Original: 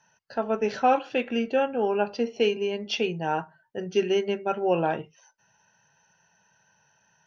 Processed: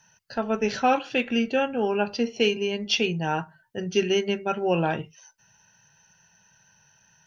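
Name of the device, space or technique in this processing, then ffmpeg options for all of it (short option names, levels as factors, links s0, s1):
smiley-face EQ: -af "lowshelf=f=110:g=6,equalizer=f=600:t=o:w=2.7:g=-7.5,highshelf=f=5600:g=4,volume=2"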